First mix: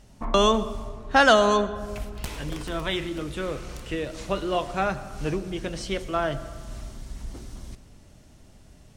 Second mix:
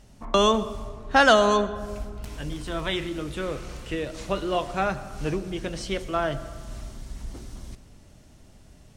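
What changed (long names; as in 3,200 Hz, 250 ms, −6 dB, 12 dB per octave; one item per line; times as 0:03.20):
first sound −7.0 dB
second sound −10.0 dB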